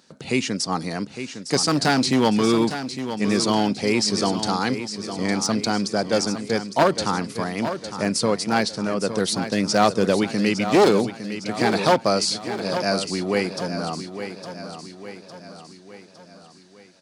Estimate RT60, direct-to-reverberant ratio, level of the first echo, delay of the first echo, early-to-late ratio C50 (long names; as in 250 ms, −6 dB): no reverb audible, no reverb audible, −10.0 dB, 858 ms, no reverb audible